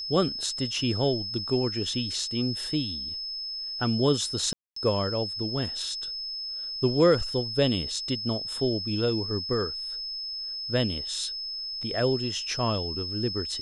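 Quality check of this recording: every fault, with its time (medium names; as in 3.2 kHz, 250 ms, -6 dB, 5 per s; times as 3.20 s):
whine 5.2 kHz -32 dBFS
4.53–4.76 s: dropout 234 ms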